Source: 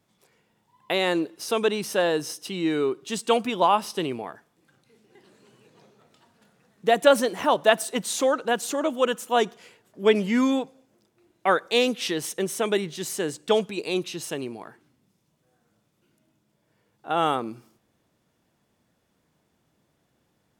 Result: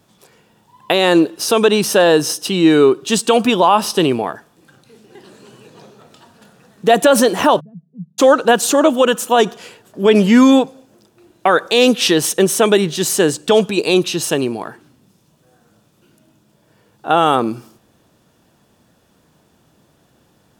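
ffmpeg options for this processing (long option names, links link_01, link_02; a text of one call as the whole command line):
ffmpeg -i in.wav -filter_complex "[0:a]asplit=3[link_01][link_02][link_03];[link_01]afade=type=out:start_time=7.59:duration=0.02[link_04];[link_02]asuperpass=centerf=160:order=4:qfactor=5.1,afade=type=in:start_time=7.59:duration=0.02,afade=type=out:start_time=8.18:duration=0.02[link_05];[link_03]afade=type=in:start_time=8.18:duration=0.02[link_06];[link_04][link_05][link_06]amix=inputs=3:normalize=0,equalizer=frequency=2100:width=7.2:gain=-8,alimiter=level_in=15dB:limit=-1dB:release=50:level=0:latency=1,volume=-1dB" out.wav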